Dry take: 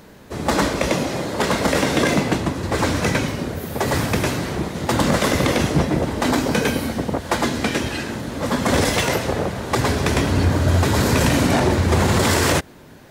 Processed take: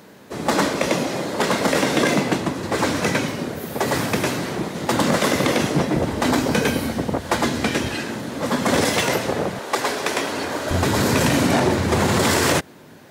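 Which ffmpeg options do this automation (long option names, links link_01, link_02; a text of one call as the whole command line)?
ffmpeg -i in.wav -af "asetnsamples=nb_out_samples=441:pad=0,asendcmd='5.95 highpass f 68;7.95 highpass f 140;9.59 highpass f 410;10.71 highpass f 120',highpass=150" out.wav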